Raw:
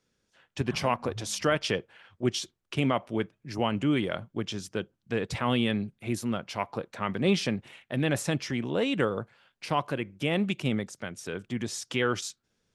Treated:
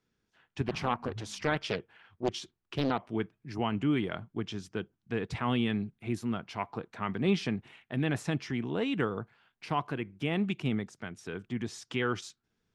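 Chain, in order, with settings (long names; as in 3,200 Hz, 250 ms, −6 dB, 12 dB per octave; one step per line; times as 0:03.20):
low-pass filter 2,700 Hz 6 dB per octave
parametric band 550 Hz −12.5 dB 0.22 octaves
0:00.68–0:03.06: highs frequency-modulated by the lows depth 0.85 ms
level −2 dB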